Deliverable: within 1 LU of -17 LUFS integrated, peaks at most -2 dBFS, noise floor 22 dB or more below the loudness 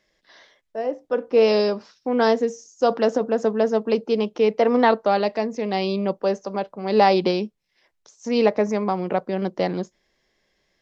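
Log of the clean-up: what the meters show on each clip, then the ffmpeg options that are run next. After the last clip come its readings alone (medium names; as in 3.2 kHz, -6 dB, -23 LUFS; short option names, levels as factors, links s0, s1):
loudness -22.0 LUFS; peak level -3.5 dBFS; loudness target -17.0 LUFS
-> -af "volume=1.78,alimiter=limit=0.794:level=0:latency=1"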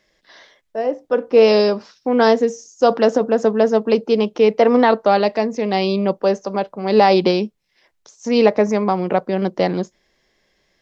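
loudness -17.0 LUFS; peak level -2.0 dBFS; noise floor -67 dBFS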